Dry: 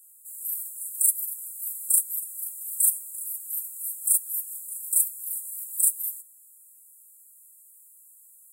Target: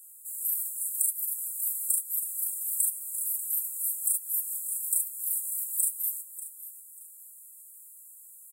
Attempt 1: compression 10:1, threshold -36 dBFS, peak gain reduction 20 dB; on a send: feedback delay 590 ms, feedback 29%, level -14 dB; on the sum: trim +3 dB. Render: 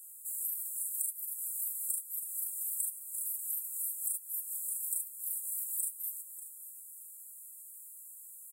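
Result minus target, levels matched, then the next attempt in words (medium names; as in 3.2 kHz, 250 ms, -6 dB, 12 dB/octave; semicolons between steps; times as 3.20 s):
compression: peak gain reduction +8.5 dB
compression 10:1, threshold -26.5 dBFS, peak gain reduction 11.5 dB; on a send: feedback delay 590 ms, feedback 29%, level -14 dB; on the sum: trim +3 dB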